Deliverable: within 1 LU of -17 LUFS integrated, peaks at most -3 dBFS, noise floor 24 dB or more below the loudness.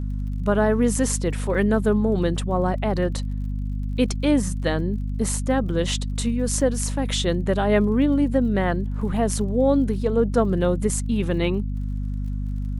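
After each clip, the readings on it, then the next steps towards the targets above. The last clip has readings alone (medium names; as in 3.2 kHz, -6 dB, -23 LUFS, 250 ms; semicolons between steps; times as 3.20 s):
tick rate 38 per s; hum 50 Hz; highest harmonic 250 Hz; hum level -24 dBFS; loudness -23.0 LUFS; peak level -7.0 dBFS; loudness target -17.0 LUFS
-> de-click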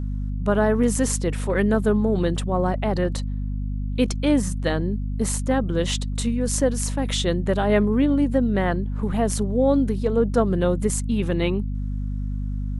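tick rate 0 per s; hum 50 Hz; highest harmonic 250 Hz; hum level -24 dBFS
-> de-hum 50 Hz, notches 5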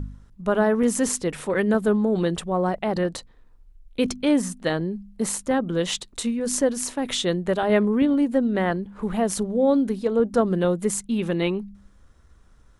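hum not found; loudness -23.5 LUFS; peak level -7.5 dBFS; loudness target -17.0 LUFS
-> trim +6.5 dB; peak limiter -3 dBFS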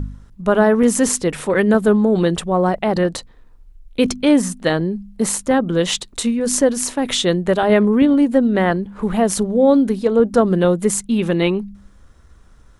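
loudness -17.0 LUFS; peak level -3.0 dBFS; noise floor -47 dBFS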